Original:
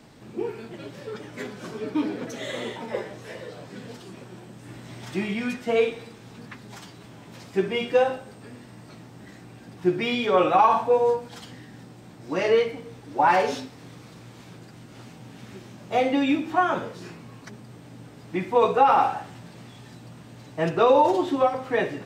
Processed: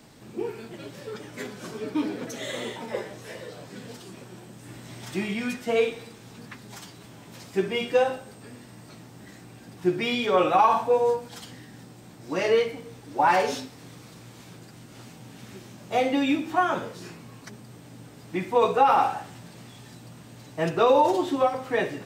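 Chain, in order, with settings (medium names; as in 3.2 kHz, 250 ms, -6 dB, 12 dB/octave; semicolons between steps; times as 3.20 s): treble shelf 6.1 kHz +9 dB; trim -1.5 dB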